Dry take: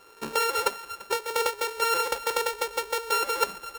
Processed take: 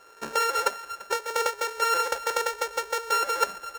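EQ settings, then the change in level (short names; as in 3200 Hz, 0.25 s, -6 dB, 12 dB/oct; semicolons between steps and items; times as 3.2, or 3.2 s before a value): fifteen-band EQ 630 Hz +8 dB, 1600 Hz +9 dB, 6300 Hz +7 dB; -4.5 dB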